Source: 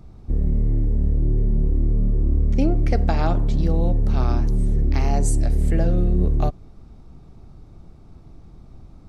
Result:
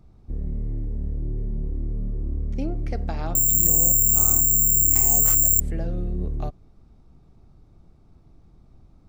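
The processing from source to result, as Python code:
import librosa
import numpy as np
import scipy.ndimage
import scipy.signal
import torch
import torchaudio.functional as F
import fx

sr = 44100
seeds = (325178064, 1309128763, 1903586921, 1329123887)

y = fx.resample_bad(x, sr, factor=6, down='none', up='zero_stuff', at=(3.35, 5.6))
y = y * librosa.db_to_amplitude(-8.5)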